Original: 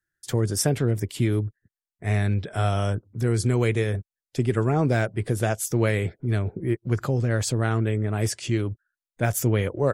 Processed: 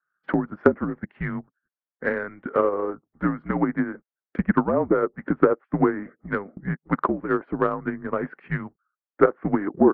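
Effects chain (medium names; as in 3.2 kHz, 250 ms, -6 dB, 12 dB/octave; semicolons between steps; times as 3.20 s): mistuned SSB -190 Hz 480–2000 Hz; low-pass that closes with the level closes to 1.3 kHz, closed at -26.5 dBFS; transient shaper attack +10 dB, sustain -4 dB; trim +4.5 dB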